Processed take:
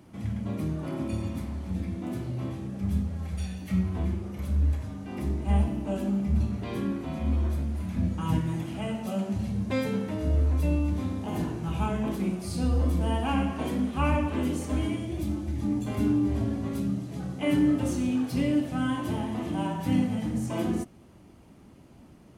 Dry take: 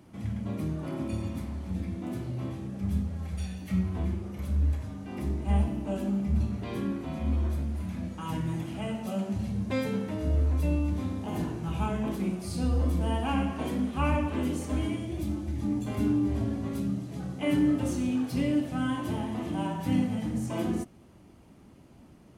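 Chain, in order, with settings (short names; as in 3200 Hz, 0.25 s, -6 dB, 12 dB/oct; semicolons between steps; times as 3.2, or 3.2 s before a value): 7.96–8.39 low shelf 190 Hz +11.5 dB; gain +1.5 dB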